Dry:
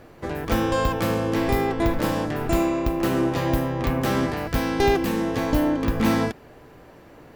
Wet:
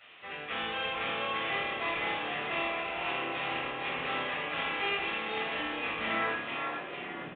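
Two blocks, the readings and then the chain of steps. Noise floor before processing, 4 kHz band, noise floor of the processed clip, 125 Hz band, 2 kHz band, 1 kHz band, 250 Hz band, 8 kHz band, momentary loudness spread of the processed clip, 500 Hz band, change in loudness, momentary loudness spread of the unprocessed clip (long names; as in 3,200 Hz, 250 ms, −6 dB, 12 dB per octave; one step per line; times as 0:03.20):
−48 dBFS, −0.5 dB, −42 dBFS, −23.5 dB, 0.0 dB, −6.5 dB, −20.0 dB, below −40 dB, 5 LU, −13.0 dB, −9.0 dB, 4 LU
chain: linear delta modulator 64 kbit/s, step −40.5 dBFS
band-pass filter sweep 2,600 Hz → 200 Hz, 0:06.05–0:07.28
echo with shifted repeats 453 ms, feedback 59%, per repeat +37 Hz, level −4.5 dB
rectangular room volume 860 cubic metres, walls furnished, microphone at 6.6 metres
downsampling to 8,000 Hz
level −3 dB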